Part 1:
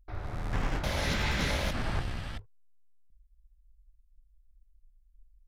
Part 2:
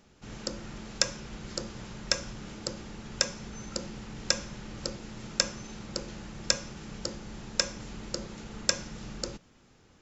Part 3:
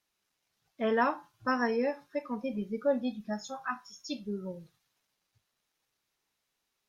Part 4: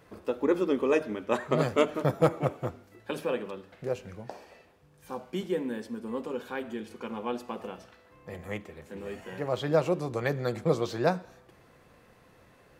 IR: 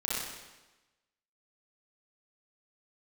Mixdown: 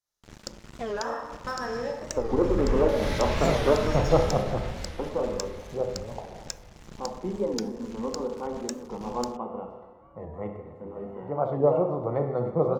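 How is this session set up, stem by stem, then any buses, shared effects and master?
0.0 dB, 2.05 s, bus A, send −11 dB, echo send −9.5 dB, no processing
+3.0 dB, 0.00 s, bus A, no send, no echo send, no processing
+1.5 dB, 0.00 s, bus A, send −12 dB, no echo send, graphic EQ with 15 bands 250 Hz −11 dB, 2,500 Hz −11 dB, 6,300 Hz +7 dB
−5.0 dB, 1.90 s, no bus, send −8 dB, no echo send, Savitzky-Golay smoothing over 65 samples; parametric band 840 Hz +7 dB 1.6 octaves
bus A: 0.0 dB, dead-zone distortion −37.5 dBFS; downward compressor 16 to 1, threshold −33 dBFS, peak gain reduction 19 dB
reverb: on, RT60 1.1 s, pre-delay 30 ms
echo: repeating echo 663 ms, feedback 51%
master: low-shelf EQ 170 Hz +4.5 dB; wow of a warped record 45 rpm, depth 160 cents

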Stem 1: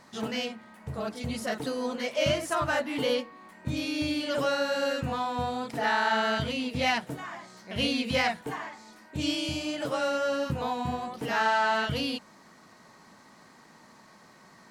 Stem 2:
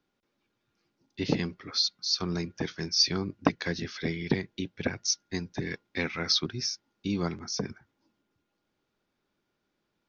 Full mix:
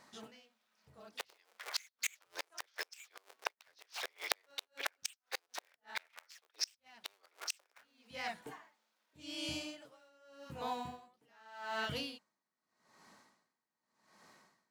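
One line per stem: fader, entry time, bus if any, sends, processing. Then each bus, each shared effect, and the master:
−7.0 dB, 0.00 s, no send, low-shelf EQ 220 Hz −7.5 dB; tremolo with a sine in dB 0.84 Hz, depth 31 dB; automatic ducking −17 dB, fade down 0.30 s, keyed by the second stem
0.0 dB, 0.00 s, no send, sub-harmonics by changed cycles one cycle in 2, inverted; Bessel high-pass filter 810 Hz, order 8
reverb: not used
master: high-shelf EQ 3,000 Hz +2.5 dB; noise that follows the level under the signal 33 dB; gate with flip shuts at −22 dBFS, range −34 dB

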